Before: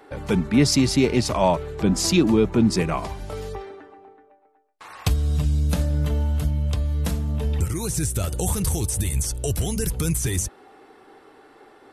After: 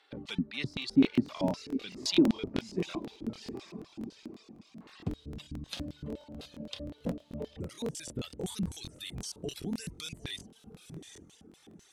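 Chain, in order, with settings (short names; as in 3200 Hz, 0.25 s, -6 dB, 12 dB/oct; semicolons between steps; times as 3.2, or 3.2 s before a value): diffused feedback echo 0.799 s, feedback 43%, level -9.5 dB; reverb removal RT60 1.7 s; LFO band-pass square 3.9 Hz 260–3600 Hz; 6.08–8.13 bell 570 Hz +14.5 dB 0.48 oct; crackling interface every 0.11 s, samples 1024, repeat, from 0.69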